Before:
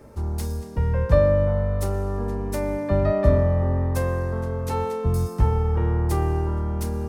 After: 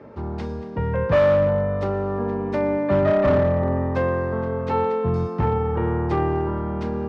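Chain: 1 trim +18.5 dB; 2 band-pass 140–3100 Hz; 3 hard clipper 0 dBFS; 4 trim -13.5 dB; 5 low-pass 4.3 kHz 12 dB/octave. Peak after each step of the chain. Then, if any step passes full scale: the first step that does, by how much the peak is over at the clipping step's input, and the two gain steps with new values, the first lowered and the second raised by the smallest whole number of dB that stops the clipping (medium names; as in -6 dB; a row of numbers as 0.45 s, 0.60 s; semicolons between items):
+13.0 dBFS, +9.5 dBFS, 0.0 dBFS, -13.5 dBFS, -13.0 dBFS; step 1, 9.5 dB; step 1 +8.5 dB, step 4 -3.5 dB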